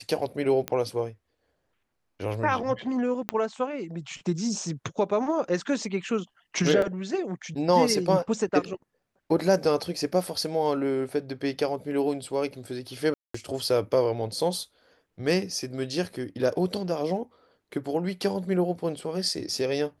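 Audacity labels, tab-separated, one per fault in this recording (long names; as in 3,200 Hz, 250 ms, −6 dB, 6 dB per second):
0.680000	0.680000	click −13 dBFS
3.290000	3.290000	click −11 dBFS
6.820000	6.820000	drop-out 2.5 ms
13.140000	13.340000	drop-out 204 ms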